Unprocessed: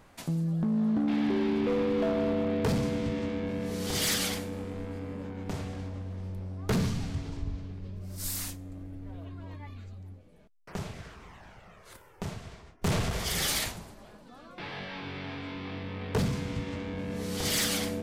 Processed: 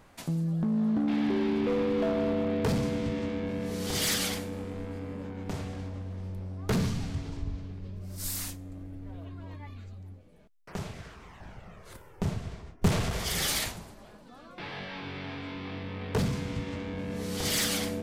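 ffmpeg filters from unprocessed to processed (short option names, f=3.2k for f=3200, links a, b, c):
-filter_complex "[0:a]asettb=1/sr,asplit=3[a][b][c];[a]atrim=end=11.404[d];[b]atrim=start=11.4:end=12.88,asetpts=PTS-STARTPTS,afade=t=in:d=0.004:c=qsin,afade=t=out:st=1.476:d=0.004:c=qsin,lowshelf=f=440:g=8[e];[c]atrim=start=12.876[f];[d][e]acrossfade=d=0.004:c1=hsin:c2=qsin[g];[g][f]acrossfade=d=0.004:c1=qsin:c2=hsin"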